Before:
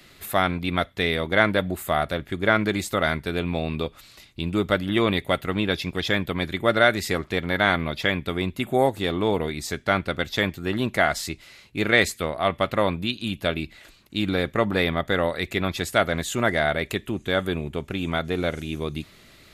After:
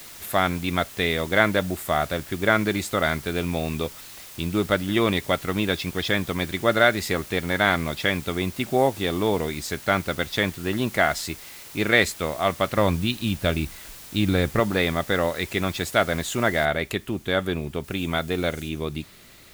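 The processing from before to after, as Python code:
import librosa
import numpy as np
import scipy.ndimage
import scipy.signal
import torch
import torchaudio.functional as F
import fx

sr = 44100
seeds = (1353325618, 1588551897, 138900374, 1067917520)

y = fx.low_shelf(x, sr, hz=130.0, db=11.5, at=(12.77, 14.6))
y = fx.noise_floor_step(y, sr, seeds[0], at_s=16.65, before_db=-43, after_db=-54, tilt_db=0.0)
y = fx.high_shelf(y, sr, hz=4800.0, db=6.5, at=(17.84, 18.69))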